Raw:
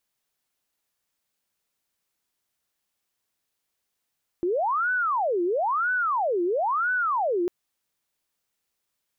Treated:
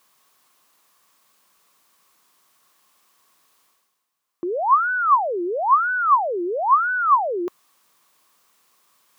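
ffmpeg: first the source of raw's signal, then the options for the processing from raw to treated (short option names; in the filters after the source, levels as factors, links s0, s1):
-f lavfi -i "aevalsrc='0.0841*sin(2*PI*(922*t-578/(2*PI*1)*sin(2*PI*1*t)))':d=3.05:s=44100"
-af "areverse,acompressor=mode=upward:threshold=0.00447:ratio=2.5,areverse,highpass=160,equalizer=f=1100:t=o:w=0.33:g=13.5"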